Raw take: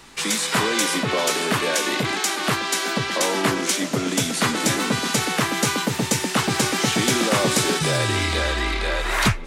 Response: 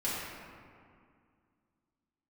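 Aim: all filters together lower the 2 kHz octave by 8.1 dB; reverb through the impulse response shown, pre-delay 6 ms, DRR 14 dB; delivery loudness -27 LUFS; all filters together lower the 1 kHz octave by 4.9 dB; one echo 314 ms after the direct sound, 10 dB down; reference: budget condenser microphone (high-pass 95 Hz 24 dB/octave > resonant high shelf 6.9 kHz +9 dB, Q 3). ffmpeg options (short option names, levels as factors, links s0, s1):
-filter_complex "[0:a]equalizer=f=1000:t=o:g=-3.5,equalizer=f=2000:t=o:g=-8.5,aecho=1:1:314:0.316,asplit=2[s0][s1];[1:a]atrim=start_sample=2205,adelay=6[s2];[s1][s2]afir=irnorm=-1:irlink=0,volume=0.0891[s3];[s0][s3]amix=inputs=2:normalize=0,highpass=f=95:w=0.5412,highpass=f=95:w=1.3066,highshelf=f=6900:t=q:w=3:g=9,volume=0.299"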